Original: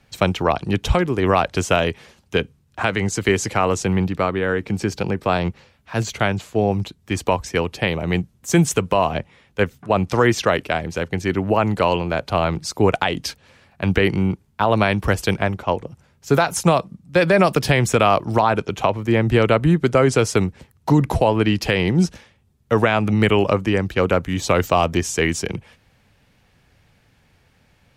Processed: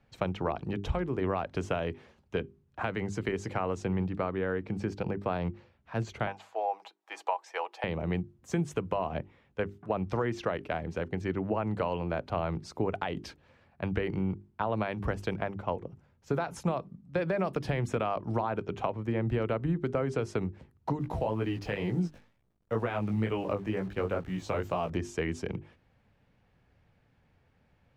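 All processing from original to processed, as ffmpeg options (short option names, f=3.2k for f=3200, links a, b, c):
-filter_complex "[0:a]asettb=1/sr,asplit=3[a][b][c];[a]atrim=end=6.274[d];[b]atrim=start=6.27:end=7.84,asetpts=PTS-STARTPTS,afade=t=in:d=0.004:c=qsin,afade=t=out:st=1.566:d=0.004:c=qsin,highpass=f=600:w=0.5412,highpass=f=600:w=1.3066,equalizer=f=830:w=3.2:g=9,aecho=1:1:6.2:0.34,atrim=end_sample=69237[e];[c]atrim=start=7.836[f];[d][e]acrossfade=d=0.004:c1=hsin:c2=qsin[g];[g][f]acrossfade=d=0.004:c1=qsin:c2=hsin,asettb=1/sr,asplit=3[h][i][j];[h]atrim=end=20.994[k];[i]atrim=start=20.99:end=24.9,asetpts=PTS-STARTPTS,afade=t=in:d=0.004:c=qsin,afade=t=out:st=3.906:d=0.004:c=qsin,highshelf=f=7.8k:g=4.5,acrusher=bits=7:dc=4:mix=0:aa=0.000001,flanger=delay=16:depth=4.1:speed=2.1[l];[j]atrim=start=24.896[m];[k][l]acrossfade=d=0.004:c1=hsin:c2=qsin[n];[n][m]acrossfade=d=0.004:c1=qsin:c2=hsin,acompressor=threshold=-17dB:ratio=6,lowpass=f=1.3k:p=1,bandreject=f=50:t=h:w=6,bandreject=f=100:t=h:w=6,bandreject=f=150:t=h:w=6,bandreject=f=200:t=h:w=6,bandreject=f=250:t=h:w=6,bandreject=f=300:t=h:w=6,bandreject=f=350:t=h:w=6,bandreject=f=400:t=h:w=6,volume=-7.5dB"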